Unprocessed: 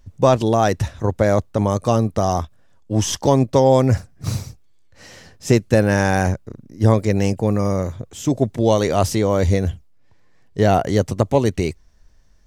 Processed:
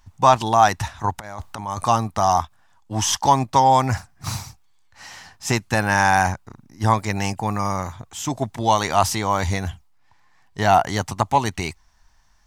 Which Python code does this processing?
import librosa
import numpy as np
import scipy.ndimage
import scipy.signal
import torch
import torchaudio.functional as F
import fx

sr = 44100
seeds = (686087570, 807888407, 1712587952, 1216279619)

y = fx.over_compress(x, sr, threshold_db=-24.0, ratio=-0.5, at=(1.18, 1.85))
y = fx.low_shelf_res(y, sr, hz=660.0, db=-8.5, q=3.0)
y = F.gain(torch.from_numpy(y), 2.5).numpy()